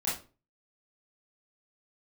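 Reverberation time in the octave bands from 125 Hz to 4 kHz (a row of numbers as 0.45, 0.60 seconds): 0.45, 0.45, 0.40, 0.30, 0.30, 0.25 seconds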